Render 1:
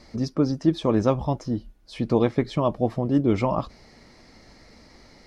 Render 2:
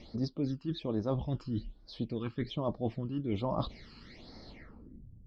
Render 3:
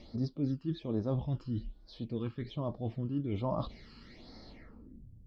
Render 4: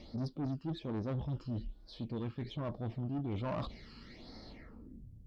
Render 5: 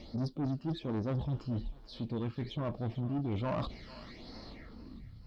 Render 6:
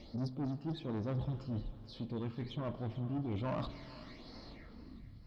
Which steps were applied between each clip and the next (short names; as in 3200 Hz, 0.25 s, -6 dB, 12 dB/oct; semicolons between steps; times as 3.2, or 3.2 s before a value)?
reverse; compressor 6:1, threshold -30 dBFS, peak gain reduction 15 dB; reverse; low-pass sweep 3600 Hz -> 110 Hz, 4.49–5.07; phaser stages 12, 1.2 Hz, lowest notch 620–2800 Hz
harmonic-percussive split harmonic +9 dB; gain -7 dB
tube stage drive 34 dB, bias 0.25; gain +1.5 dB
thinning echo 0.444 s, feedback 57%, high-pass 680 Hz, level -15 dB; gain +3 dB
spring tank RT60 2.8 s, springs 39/47 ms, chirp 30 ms, DRR 12 dB; gain -3.5 dB